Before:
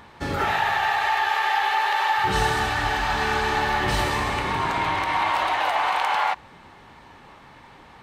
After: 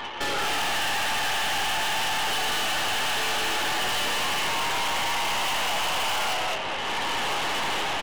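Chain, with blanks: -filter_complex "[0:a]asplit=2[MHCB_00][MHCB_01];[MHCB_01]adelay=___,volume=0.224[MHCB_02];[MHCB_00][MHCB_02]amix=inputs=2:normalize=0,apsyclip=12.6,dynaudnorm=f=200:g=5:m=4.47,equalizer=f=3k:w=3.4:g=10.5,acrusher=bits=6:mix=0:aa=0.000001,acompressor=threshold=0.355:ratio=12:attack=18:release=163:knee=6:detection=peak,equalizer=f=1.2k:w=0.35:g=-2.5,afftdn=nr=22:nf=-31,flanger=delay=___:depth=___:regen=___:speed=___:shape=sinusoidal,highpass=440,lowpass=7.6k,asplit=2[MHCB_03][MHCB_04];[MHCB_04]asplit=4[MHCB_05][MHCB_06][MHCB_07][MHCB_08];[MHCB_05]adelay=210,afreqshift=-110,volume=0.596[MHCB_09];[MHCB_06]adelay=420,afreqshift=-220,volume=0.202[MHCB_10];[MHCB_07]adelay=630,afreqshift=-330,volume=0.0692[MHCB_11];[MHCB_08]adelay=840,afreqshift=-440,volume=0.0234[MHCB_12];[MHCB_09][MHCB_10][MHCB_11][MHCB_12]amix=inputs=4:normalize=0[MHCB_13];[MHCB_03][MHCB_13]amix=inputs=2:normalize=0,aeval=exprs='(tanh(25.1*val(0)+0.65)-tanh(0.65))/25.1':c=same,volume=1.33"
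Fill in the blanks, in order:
12, 9.4, 8.9, 78, 0.77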